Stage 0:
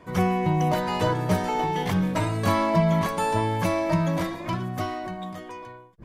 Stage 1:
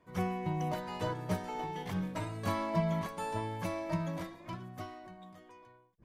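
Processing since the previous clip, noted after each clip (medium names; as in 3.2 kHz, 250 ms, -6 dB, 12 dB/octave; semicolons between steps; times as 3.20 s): upward expansion 1.5:1, over -33 dBFS; trim -9 dB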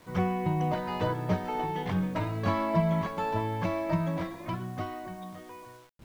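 distance through air 170 m; in parallel at +2 dB: compression 6:1, threshold -42 dBFS, peak gain reduction 15.5 dB; on the sum: bit crusher 10-bit; trim +3.5 dB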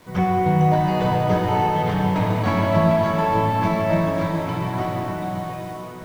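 plate-style reverb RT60 4.8 s, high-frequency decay 0.95×, DRR -3 dB; trim +5 dB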